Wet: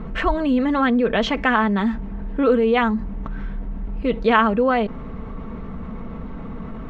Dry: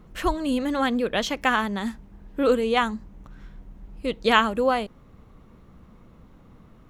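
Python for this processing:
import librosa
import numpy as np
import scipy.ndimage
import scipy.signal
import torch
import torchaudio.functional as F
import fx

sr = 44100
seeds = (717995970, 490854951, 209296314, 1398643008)

y = scipy.signal.sosfilt(scipy.signal.butter(2, 2300.0, 'lowpass', fs=sr, output='sos'), x)
y = y + 0.48 * np.pad(y, (int(4.5 * sr / 1000.0), 0))[:len(y)]
y = fx.env_flatten(y, sr, amount_pct=50)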